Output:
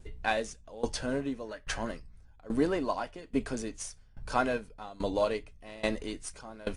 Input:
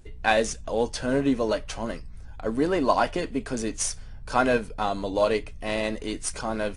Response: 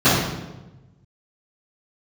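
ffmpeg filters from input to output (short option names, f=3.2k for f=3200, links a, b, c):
-filter_complex "[0:a]asettb=1/sr,asplit=3[a][b][c];[a]atrim=end=1.454[d];[b]atrim=start=1.45:end=1.89,asetpts=PTS-STARTPTS,afade=t=in:d=0.004:c=qsin,afade=t=out:st=0.436:d=0.004:c=qsin,equalizer=f=1.7k:t=o:w=0.41:g=12.5[e];[c]atrim=start=1.886[f];[d][e]acrossfade=d=0.004:c1=hsin:c2=qsin[g];[g][f]acrossfade=d=0.004:c1=qsin:c2=hsin,aeval=exprs='val(0)*pow(10,-21*if(lt(mod(1.2*n/s,1),2*abs(1.2)/1000),1-mod(1.2*n/s,1)/(2*abs(1.2)/1000),(mod(1.2*n/s,1)-2*abs(1.2)/1000)/(1-2*abs(1.2)/1000))/20)':c=same"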